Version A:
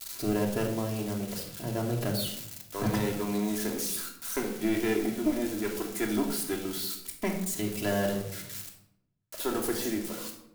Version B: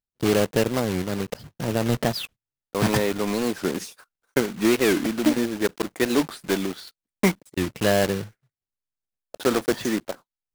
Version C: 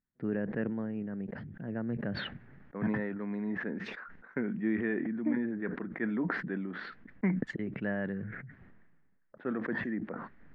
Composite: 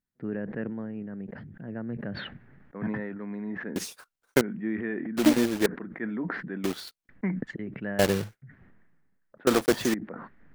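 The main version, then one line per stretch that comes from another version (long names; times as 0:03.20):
C
0:03.76–0:04.41: punch in from B
0:05.17–0:05.66: punch in from B
0:06.64–0:07.09: punch in from B
0:07.99–0:08.42: punch in from B
0:09.47–0:09.94: punch in from B
not used: A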